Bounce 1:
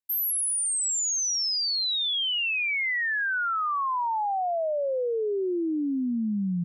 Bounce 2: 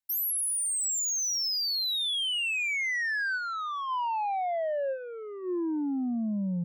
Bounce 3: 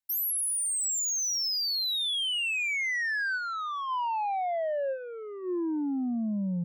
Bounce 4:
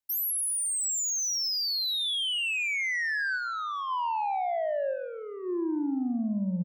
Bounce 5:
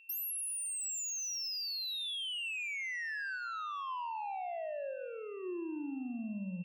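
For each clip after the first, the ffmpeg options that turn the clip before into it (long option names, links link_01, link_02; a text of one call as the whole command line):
ffmpeg -i in.wav -af "asoftclip=type=tanh:threshold=-26dB,superequalizer=7b=0.316:10b=0.631" out.wav
ffmpeg -i in.wav -af anull out.wav
ffmpeg -i in.wav -filter_complex "[0:a]asplit=2[link_01][link_02];[link_02]adelay=127,lowpass=frequency=1300:poles=1,volume=-7dB,asplit=2[link_03][link_04];[link_04]adelay=127,lowpass=frequency=1300:poles=1,volume=0.21,asplit=2[link_05][link_06];[link_06]adelay=127,lowpass=frequency=1300:poles=1,volume=0.21[link_07];[link_01][link_03][link_05][link_07]amix=inputs=4:normalize=0" out.wav
ffmpeg -i in.wav -af "acompressor=threshold=-33dB:ratio=6,aeval=exprs='val(0)+0.00251*sin(2*PI*2700*n/s)':channel_layout=same,volume=-4.5dB" out.wav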